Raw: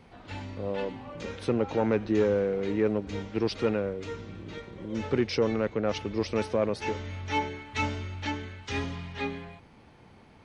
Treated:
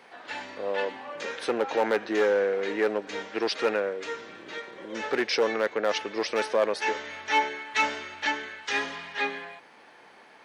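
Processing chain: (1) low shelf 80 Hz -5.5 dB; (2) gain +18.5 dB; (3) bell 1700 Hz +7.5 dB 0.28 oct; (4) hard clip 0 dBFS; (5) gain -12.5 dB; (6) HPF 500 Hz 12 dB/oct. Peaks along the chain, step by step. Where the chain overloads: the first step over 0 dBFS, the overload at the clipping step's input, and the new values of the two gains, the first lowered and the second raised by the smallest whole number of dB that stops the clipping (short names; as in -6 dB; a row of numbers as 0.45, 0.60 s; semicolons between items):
-14.0, +4.5, +5.5, 0.0, -12.5, -12.0 dBFS; step 2, 5.5 dB; step 2 +12.5 dB, step 5 -6.5 dB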